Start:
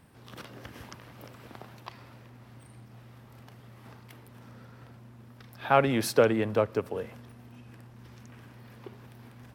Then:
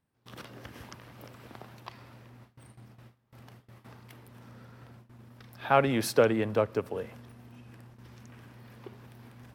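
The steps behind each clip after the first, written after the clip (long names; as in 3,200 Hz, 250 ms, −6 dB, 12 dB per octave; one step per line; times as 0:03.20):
noise gate with hold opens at −42 dBFS
level −1 dB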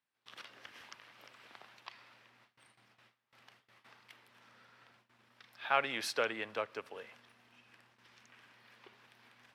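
resonant band-pass 2,800 Hz, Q 0.78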